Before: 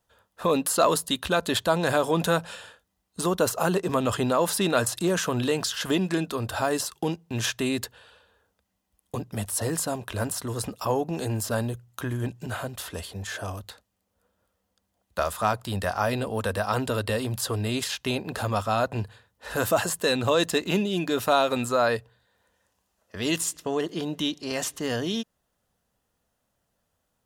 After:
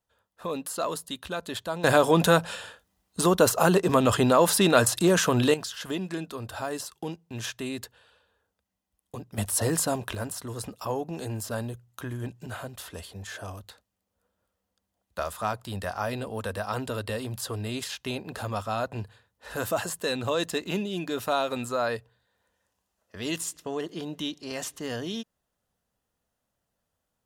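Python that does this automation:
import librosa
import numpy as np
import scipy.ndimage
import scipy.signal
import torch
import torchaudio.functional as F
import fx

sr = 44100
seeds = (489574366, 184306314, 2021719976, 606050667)

y = fx.gain(x, sr, db=fx.steps((0.0, -9.0), (1.84, 3.5), (5.54, -7.0), (9.38, 2.0), (10.15, -5.0)))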